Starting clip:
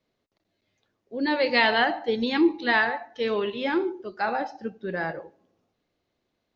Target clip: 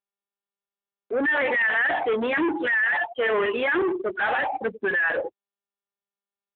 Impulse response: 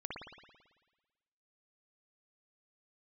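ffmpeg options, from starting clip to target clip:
-filter_complex "[0:a]afftfilt=real='re*gte(hypot(re,im),0.02)':imag='im*gte(hypot(re,im),0.02)':win_size=1024:overlap=0.75,equalizer=frequency=1800:width=3.3:gain=14,asplit=2[link_01][link_02];[link_02]highpass=frequency=720:poles=1,volume=34dB,asoftclip=type=tanh:threshold=-1.5dB[link_03];[link_01][link_03]amix=inputs=2:normalize=0,lowpass=frequency=1900:poles=1,volume=-6dB,lowpass=frequency=3100:width=0.5412,lowpass=frequency=3100:width=1.3066,asoftclip=type=tanh:threshold=-11.5dB,acompressor=mode=upward:threshold=-17dB:ratio=2.5,highpass=280,volume=-7dB" -ar 8000 -c:a libopencore_amrnb -b:a 7400

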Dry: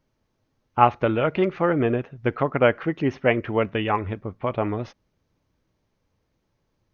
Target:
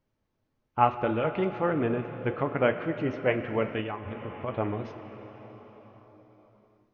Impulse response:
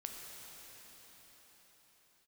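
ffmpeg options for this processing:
-filter_complex "[0:a]asplit=2[link_01][link_02];[1:a]atrim=start_sample=2205,lowpass=4300[link_03];[link_02][link_03]afir=irnorm=-1:irlink=0,volume=-0.5dB[link_04];[link_01][link_04]amix=inputs=2:normalize=0,asplit=3[link_05][link_06][link_07];[link_05]afade=type=out:start_time=3.8:duration=0.02[link_08];[link_06]acompressor=threshold=-21dB:ratio=10,afade=type=in:start_time=3.8:duration=0.02,afade=type=out:start_time=4.47:duration=0.02[link_09];[link_07]afade=type=in:start_time=4.47:duration=0.02[link_10];[link_08][link_09][link_10]amix=inputs=3:normalize=0,flanger=delay=9.3:depth=6:regen=-66:speed=0.65:shape=sinusoidal,volume=-5.5dB"

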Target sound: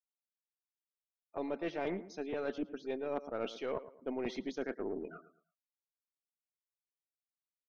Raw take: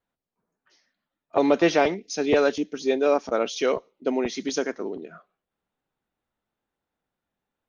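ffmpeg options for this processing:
ffmpeg -i in.wav -filter_complex "[0:a]afftfilt=real='re*gte(hypot(re,im),0.01)':imag='im*gte(hypot(re,im),0.01)':win_size=1024:overlap=0.75,lowpass=3100,areverse,acompressor=threshold=-29dB:ratio=10,areverse,asplit=2[link_01][link_02];[link_02]adelay=111,lowpass=frequency=1900:poles=1,volume=-14dB,asplit=2[link_03][link_04];[link_04]adelay=111,lowpass=frequency=1900:poles=1,volume=0.34,asplit=2[link_05][link_06];[link_06]adelay=111,lowpass=frequency=1900:poles=1,volume=0.34[link_07];[link_01][link_03][link_05][link_07]amix=inputs=4:normalize=0,aeval=exprs='0.1*(cos(1*acos(clip(val(0)/0.1,-1,1)))-cos(1*PI/2))+0.00562*(cos(4*acos(clip(val(0)/0.1,-1,1)))-cos(4*PI/2))':channel_layout=same,volume=-5dB" out.wav

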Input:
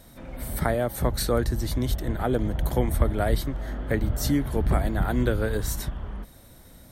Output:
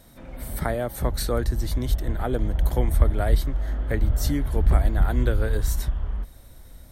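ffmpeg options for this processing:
ffmpeg -i in.wav -af "asubboost=boost=3.5:cutoff=81,volume=-1.5dB" out.wav

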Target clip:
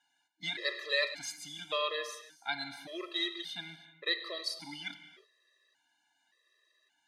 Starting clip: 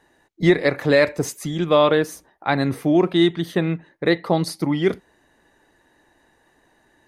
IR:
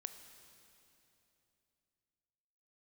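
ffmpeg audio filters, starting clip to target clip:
-filter_complex "[0:a]bandpass=frequency=4000:width_type=q:width=1.4:csg=0[link_01];[1:a]atrim=start_sample=2205,afade=type=out:start_time=0.38:duration=0.01,atrim=end_sample=17199[link_02];[link_01][link_02]afir=irnorm=-1:irlink=0,afftfilt=real='re*gt(sin(2*PI*0.87*pts/sr)*(1-2*mod(floor(b*sr/1024/340),2)),0)':imag='im*gt(sin(2*PI*0.87*pts/sr)*(1-2*mod(floor(b*sr/1024/340),2)),0)':win_size=1024:overlap=0.75,volume=4dB"

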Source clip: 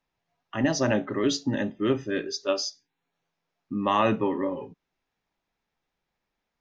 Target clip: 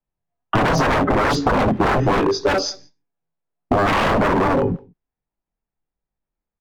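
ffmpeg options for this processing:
ffmpeg -i in.wav -filter_complex "[0:a]asplit=2[link_01][link_02];[link_02]asoftclip=type=hard:threshold=-26.5dB,volume=-5.5dB[link_03];[link_01][link_03]amix=inputs=2:normalize=0,agate=range=-33dB:threshold=-44dB:ratio=3:detection=peak,apsyclip=18dB,aemphasis=mode=reproduction:type=riaa,flanger=delay=20:depth=7.4:speed=1.3,aeval=exprs='0.422*(abs(mod(val(0)/0.422+3,4)-2)-1)':channel_layout=same,acompressor=threshold=-15dB:ratio=6,asplit=2[link_04][link_05];[link_05]adelay=169.1,volume=-28dB,highshelf=frequency=4000:gain=-3.8[link_06];[link_04][link_06]amix=inputs=2:normalize=0,acrossover=split=190[link_07][link_08];[link_08]acompressor=threshold=-19dB:ratio=6[link_09];[link_07][link_09]amix=inputs=2:normalize=0,equalizer=frequency=750:width=0.39:gain=5" out.wav

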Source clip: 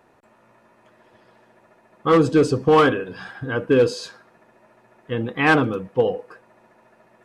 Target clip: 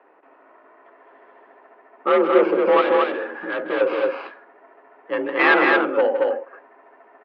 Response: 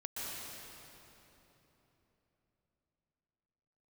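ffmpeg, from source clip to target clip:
-filter_complex "[0:a]asettb=1/sr,asplit=3[link_01][link_02][link_03];[link_01]atrim=end=5.134[link_04];[link_02]atrim=start=5.13:end=6.07,asetpts=PTS-STARTPTS,afade=type=in:duration=0.004:curve=qsin,afade=type=out:start_time=0.936:duration=0.004:curve=qsin,equalizer=frequency=2400:width=0.54:gain=7.5[link_05];[link_03]atrim=start=6.066[link_06];[link_04][link_05]acrossfade=duration=0.004:curve1=hsin:curve2=qsin[link_07];[link_07][link_06]acrossfade=duration=0.004:curve1=qsin:curve2=hsin,acrossover=split=2700[link_08][link_09];[link_08]asoftclip=type=tanh:threshold=-15dB[link_10];[link_09]acrusher=samples=12:mix=1:aa=0.000001[link_11];[link_10][link_11]amix=inputs=2:normalize=0,asettb=1/sr,asplit=3[link_12][link_13][link_14];[link_12]atrim=end=2.814[link_15];[link_13]atrim=start=2.81:end=3.81,asetpts=PTS-STARTPTS,afade=type=in:duration=0.004:curve=qsin,afade=type=out:start_time=0.996:duration=0.004:curve=qsin,asoftclip=type=hard:threshold=-25dB[link_16];[link_14]atrim=start=3.806[link_17];[link_15][link_16]acrossfade=duration=0.004:curve1=hsin:curve2=qsin[link_18];[link_18][link_17]acrossfade=duration=0.004:curve1=qsin:curve2=hsin,asplit=2[link_19][link_20];[link_20]aecho=0:1:160.3|224.5:0.316|0.708[link_21];[link_19][link_21]amix=inputs=2:normalize=0,highpass=frequency=240:width_type=q:width=0.5412,highpass=frequency=240:width_type=q:width=1.307,lowpass=frequency=3500:width_type=q:width=0.5176,lowpass=frequency=3500:width_type=q:width=0.7071,lowpass=frequency=3500:width_type=q:width=1.932,afreqshift=51,volume=3dB"

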